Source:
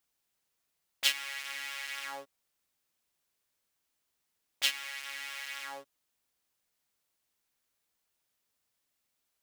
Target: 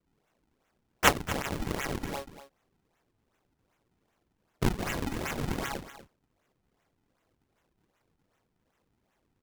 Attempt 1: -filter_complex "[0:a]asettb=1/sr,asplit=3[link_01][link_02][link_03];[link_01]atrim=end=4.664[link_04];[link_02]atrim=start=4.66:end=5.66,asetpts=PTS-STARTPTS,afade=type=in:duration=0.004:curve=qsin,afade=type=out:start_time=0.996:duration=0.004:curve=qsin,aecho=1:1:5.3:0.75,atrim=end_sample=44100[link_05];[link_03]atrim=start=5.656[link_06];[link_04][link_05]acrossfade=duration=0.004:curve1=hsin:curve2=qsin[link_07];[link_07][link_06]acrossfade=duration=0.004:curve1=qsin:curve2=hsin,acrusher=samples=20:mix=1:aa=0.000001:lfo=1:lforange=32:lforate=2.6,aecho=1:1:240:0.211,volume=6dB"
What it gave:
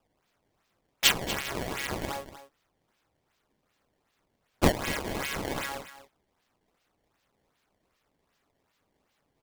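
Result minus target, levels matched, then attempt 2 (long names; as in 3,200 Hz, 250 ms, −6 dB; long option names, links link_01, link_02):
sample-and-hold swept by an LFO: distortion −28 dB
-filter_complex "[0:a]asettb=1/sr,asplit=3[link_01][link_02][link_03];[link_01]atrim=end=4.664[link_04];[link_02]atrim=start=4.66:end=5.66,asetpts=PTS-STARTPTS,afade=type=in:duration=0.004:curve=qsin,afade=type=out:start_time=0.996:duration=0.004:curve=qsin,aecho=1:1:5.3:0.75,atrim=end_sample=44100[link_05];[link_03]atrim=start=5.656[link_06];[link_04][link_05]acrossfade=duration=0.004:curve1=hsin:curve2=qsin[link_07];[link_07][link_06]acrossfade=duration=0.004:curve1=qsin:curve2=hsin,acrusher=samples=45:mix=1:aa=0.000001:lfo=1:lforange=72:lforate=2.6,aecho=1:1:240:0.211,volume=6dB"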